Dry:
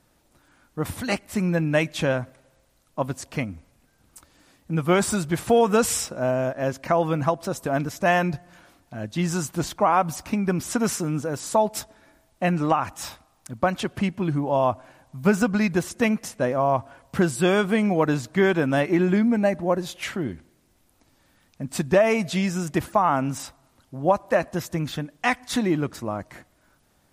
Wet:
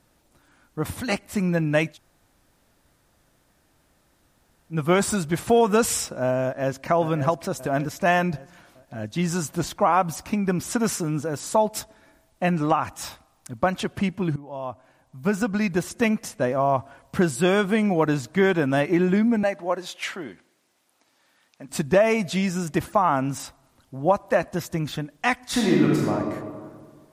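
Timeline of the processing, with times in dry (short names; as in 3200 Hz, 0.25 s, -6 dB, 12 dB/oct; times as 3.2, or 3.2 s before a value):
1.93–4.74 room tone, crossfade 0.10 s
6.43–6.88 echo throw 0.58 s, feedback 50%, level -9 dB
14.36–15.95 fade in, from -18 dB
19.43–21.69 weighting filter A
25.44–26.11 reverb throw, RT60 1.8 s, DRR -3 dB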